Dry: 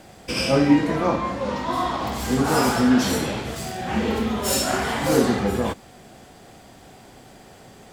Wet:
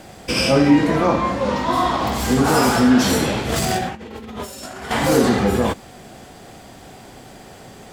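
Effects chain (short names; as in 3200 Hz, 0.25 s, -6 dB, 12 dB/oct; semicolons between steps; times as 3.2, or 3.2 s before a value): in parallel at +2 dB: limiter -14 dBFS, peak gain reduction 9 dB; 3.49–4.91 on the sum: negative-ratio compressor -24 dBFS, ratio -0.5; gain -1.5 dB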